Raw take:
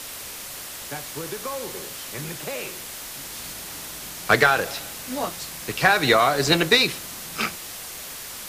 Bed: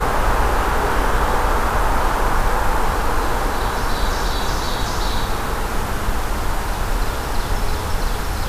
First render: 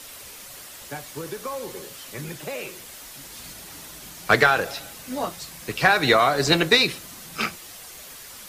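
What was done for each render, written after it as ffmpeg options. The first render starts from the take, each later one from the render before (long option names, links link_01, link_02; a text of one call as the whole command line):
ffmpeg -i in.wav -af "afftdn=noise_reduction=7:noise_floor=-37" out.wav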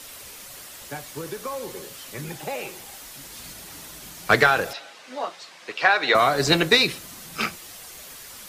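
ffmpeg -i in.wav -filter_complex "[0:a]asettb=1/sr,asplit=3[link_01][link_02][link_03];[link_01]atrim=end=2.304[link_04];[link_02]atrim=start=2.3:end=2.97,asetpts=PTS-STARTPTS,afade=type=in:duration=0.004:curve=qsin,afade=type=out:start_time=0.666:duration=0.004:curve=qsin,equalizer=frequency=800:width_type=o:width=0.23:gain=12.5[link_05];[link_03]atrim=start=2.966[link_06];[link_04][link_05]acrossfade=duration=0.004:curve1=hsin:curve2=qsin[link_07];[link_07][link_06]acrossfade=duration=0.004:curve1=qsin:curve2=hsin,asettb=1/sr,asplit=3[link_08][link_09][link_10];[link_08]atrim=end=4.734[link_11];[link_09]atrim=start=4.73:end=6.15,asetpts=PTS-STARTPTS,afade=type=in:duration=0.004:curve=qsin,afade=type=out:start_time=1.416:duration=0.004:curve=qsin,highpass=480,lowpass=4300[link_12];[link_10]atrim=start=6.146[link_13];[link_11][link_12]acrossfade=duration=0.004:curve1=hsin:curve2=qsin[link_14];[link_14][link_13]acrossfade=duration=0.004:curve1=qsin:curve2=hsin" out.wav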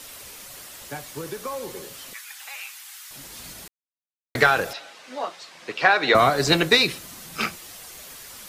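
ffmpeg -i in.wav -filter_complex "[0:a]asettb=1/sr,asplit=3[link_01][link_02][link_03];[link_01]atrim=end=2.134[link_04];[link_02]atrim=start=2.13:end=3.11,asetpts=PTS-STARTPTS,afade=type=in:duration=0.004:curve=qsin,afade=type=out:start_time=0.976:duration=0.004:curve=qsin,highpass=frequency=1200:width=0.5412,highpass=frequency=1200:width=1.3066[link_05];[link_03]atrim=start=3.106[link_06];[link_04][link_05]acrossfade=duration=0.004:curve1=hsin:curve2=qsin[link_07];[link_07][link_06]acrossfade=duration=0.004:curve1=qsin:curve2=hsin,asettb=1/sr,asplit=3[link_08][link_09][link_10];[link_08]atrim=end=5.554[link_11];[link_09]atrim=start=5.55:end=6.3,asetpts=PTS-STARTPTS,afade=type=in:duration=0.004:curve=qsin,afade=type=out:start_time=0.746:duration=0.004:curve=qsin,lowshelf=frequency=310:gain=9.5[link_12];[link_10]atrim=start=6.296[link_13];[link_11][link_12]acrossfade=duration=0.004:curve1=hsin:curve2=qsin[link_14];[link_14][link_13]acrossfade=duration=0.004:curve1=qsin:curve2=hsin,asplit=3[link_15][link_16][link_17];[link_15]atrim=end=3.68,asetpts=PTS-STARTPTS,afade=type=out:start_time=3.676:duration=0.004:curve=hsin[link_18];[link_16]atrim=start=3.68:end=4.35,asetpts=PTS-STARTPTS,volume=0[link_19];[link_17]atrim=start=4.35,asetpts=PTS-STARTPTS,afade=type=in:duration=0.004:curve=hsin[link_20];[link_18][link_19][link_20]concat=n=3:v=0:a=1" out.wav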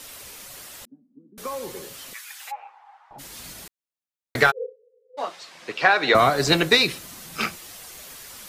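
ffmpeg -i in.wav -filter_complex "[0:a]asettb=1/sr,asplit=3[link_01][link_02][link_03];[link_01]atrim=end=0.854[link_04];[link_02]atrim=start=0.85:end=1.38,asetpts=PTS-STARTPTS,afade=type=in:duration=0.004:curve=qsin,afade=type=out:start_time=0.526:duration=0.004:curve=qsin,asuperpass=centerf=240:order=4:qfactor=4.1[link_05];[link_03]atrim=start=1.376[link_06];[link_04][link_05]acrossfade=duration=0.004:curve1=hsin:curve2=qsin[link_07];[link_07][link_06]acrossfade=duration=0.004:curve1=qsin:curve2=hsin,asplit=3[link_08][link_09][link_10];[link_08]afade=type=out:start_time=2.5:duration=0.02[link_11];[link_09]lowpass=frequency=830:width_type=q:width=7.1,afade=type=in:start_time=2.5:duration=0.02,afade=type=out:start_time=3.18:duration=0.02[link_12];[link_10]afade=type=in:start_time=3.18:duration=0.02[link_13];[link_11][link_12][link_13]amix=inputs=3:normalize=0,asplit=3[link_14][link_15][link_16];[link_14]afade=type=out:start_time=4.5:duration=0.02[link_17];[link_15]asuperpass=centerf=470:order=12:qfactor=4.7,afade=type=in:start_time=4.5:duration=0.02,afade=type=out:start_time=5.17:duration=0.02[link_18];[link_16]afade=type=in:start_time=5.17:duration=0.02[link_19];[link_17][link_18][link_19]amix=inputs=3:normalize=0" out.wav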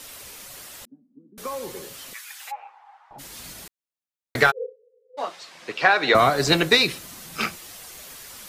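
ffmpeg -i in.wav -af anull out.wav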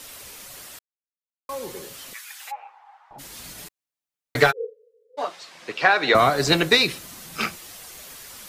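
ffmpeg -i in.wav -filter_complex "[0:a]asettb=1/sr,asplit=3[link_01][link_02][link_03];[link_01]atrim=end=3.574[link_04];[link_02]atrim=start=3.57:end=5.27,asetpts=PTS-STARTPTS,afade=type=in:duration=0.004:curve=qsin,afade=type=out:start_time=1.696:duration=0.004:curve=qsin,aecho=1:1:6.8:0.64,atrim=end_sample=74970[link_05];[link_03]atrim=start=5.266[link_06];[link_04][link_05]acrossfade=duration=0.004:curve1=hsin:curve2=qsin[link_07];[link_07][link_06]acrossfade=duration=0.004:curve1=qsin:curve2=hsin,asplit=3[link_08][link_09][link_10];[link_08]atrim=end=0.79,asetpts=PTS-STARTPTS,afade=type=out:start_time=0.786:duration=0.004:curve=hsin[link_11];[link_09]atrim=start=0.79:end=1.49,asetpts=PTS-STARTPTS,volume=0[link_12];[link_10]atrim=start=1.49,asetpts=PTS-STARTPTS,afade=type=in:duration=0.004:curve=hsin[link_13];[link_11][link_12][link_13]concat=n=3:v=0:a=1" out.wav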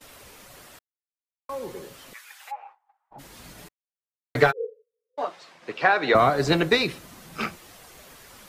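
ffmpeg -i in.wav -af "agate=range=-22dB:threshold=-46dB:ratio=16:detection=peak,highshelf=frequency=2500:gain=-10.5" out.wav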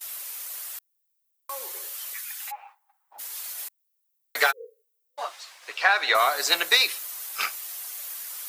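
ffmpeg -i in.wav -af "highpass=740,aemphasis=mode=production:type=riaa" out.wav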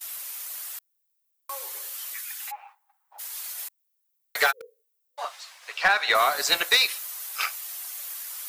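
ffmpeg -i in.wav -filter_complex "[0:a]acrossover=split=420|1500[link_01][link_02][link_03];[link_01]acrusher=bits=6:mix=0:aa=0.000001[link_04];[link_04][link_02][link_03]amix=inputs=3:normalize=0,asoftclip=type=hard:threshold=-11.5dB" out.wav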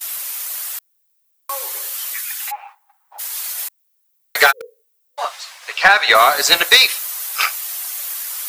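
ffmpeg -i in.wav -af "volume=10dB" out.wav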